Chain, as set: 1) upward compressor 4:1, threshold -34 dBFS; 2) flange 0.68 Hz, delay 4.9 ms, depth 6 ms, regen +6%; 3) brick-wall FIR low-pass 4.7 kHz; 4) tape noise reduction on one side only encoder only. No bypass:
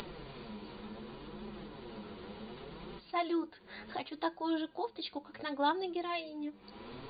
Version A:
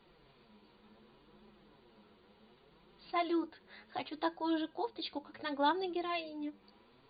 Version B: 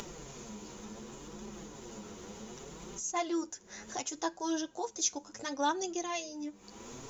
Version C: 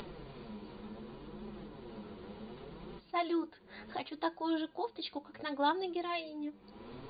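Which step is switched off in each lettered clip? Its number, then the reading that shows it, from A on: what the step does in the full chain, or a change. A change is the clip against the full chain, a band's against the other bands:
1, momentary loudness spread change -2 LU; 3, 4 kHz band +2.0 dB; 4, momentary loudness spread change +1 LU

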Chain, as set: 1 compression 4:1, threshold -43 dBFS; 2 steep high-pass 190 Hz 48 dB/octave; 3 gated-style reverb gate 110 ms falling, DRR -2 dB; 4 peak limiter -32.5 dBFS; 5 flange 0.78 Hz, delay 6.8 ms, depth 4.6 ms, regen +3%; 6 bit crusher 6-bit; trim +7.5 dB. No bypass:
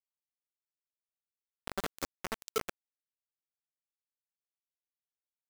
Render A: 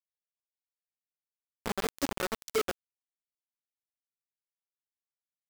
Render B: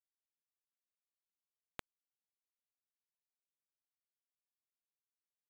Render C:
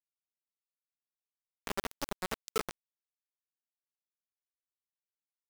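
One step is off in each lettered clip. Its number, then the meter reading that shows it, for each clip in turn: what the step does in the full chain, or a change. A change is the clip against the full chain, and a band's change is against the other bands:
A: 4, crest factor change -6.0 dB; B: 3, momentary loudness spread change -9 LU; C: 2, momentary loudness spread change +2 LU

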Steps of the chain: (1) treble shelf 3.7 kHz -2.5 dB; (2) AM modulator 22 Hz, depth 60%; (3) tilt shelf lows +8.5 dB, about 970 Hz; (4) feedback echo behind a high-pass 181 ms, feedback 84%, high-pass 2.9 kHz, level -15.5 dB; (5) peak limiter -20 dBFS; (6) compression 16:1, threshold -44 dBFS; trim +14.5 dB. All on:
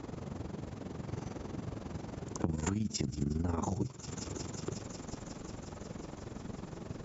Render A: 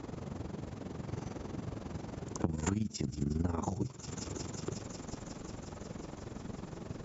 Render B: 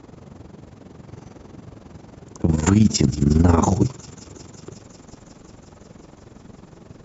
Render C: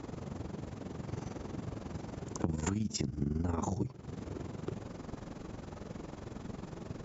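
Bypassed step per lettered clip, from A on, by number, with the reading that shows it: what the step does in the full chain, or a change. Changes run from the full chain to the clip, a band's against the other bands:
5, 4 kHz band -1.5 dB; 6, mean gain reduction 4.5 dB; 4, 4 kHz band -1.5 dB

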